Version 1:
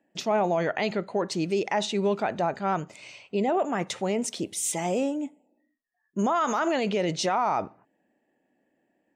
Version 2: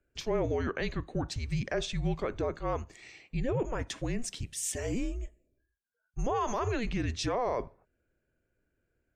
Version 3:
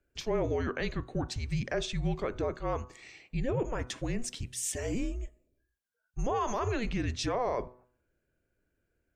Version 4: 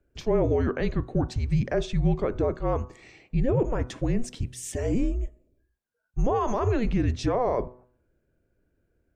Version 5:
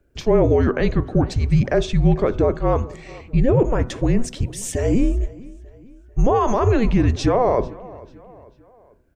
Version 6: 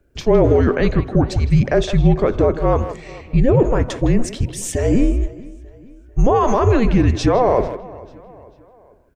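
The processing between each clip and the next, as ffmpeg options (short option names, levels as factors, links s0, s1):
-af "afreqshift=-240,volume=0.531"
-af "bandreject=f=124.6:t=h:w=4,bandreject=f=249.2:t=h:w=4,bandreject=f=373.8:t=h:w=4,bandreject=f=498.4:t=h:w=4,bandreject=f=623:t=h:w=4,bandreject=f=747.6:t=h:w=4,bandreject=f=872.2:t=h:w=4,bandreject=f=996.8:t=h:w=4,bandreject=f=1121.4:t=h:w=4,bandreject=f=1246:t=h:w=4,bandreject=f=1370.6:t=h:w=4,bandreject=f=1495.2:t=h:w=4"
-af "tiltshelf=f=1200:g=6,volume=1.33"
-filter_complex "[0:a]asplit=2[s0][s1];[s1]adelay=444,lowpass=f=4800:p=1,volume=0.0891,asplit=2[s2][s3];[s3]adelay=444,lowpass=f=4800:p=1,volume=0.48,asplit=2[s4][s5];[s5]adelay=444,lowpass=f=4800:p=1,volume=0.48[s6];[s0][s2][s4][s6]amix=inputs=4:normalize=0,volume=2.37"
-filter_complex "[0:a]asplit=2[s0][s1];[s1]adelay=160,highpass=300,lowpass=3400,asoftclip=type=hard:threshold=0.211,volume=0.282[s2];[s0][s2]amix=inputs=2:normalize=0,volume=1.33"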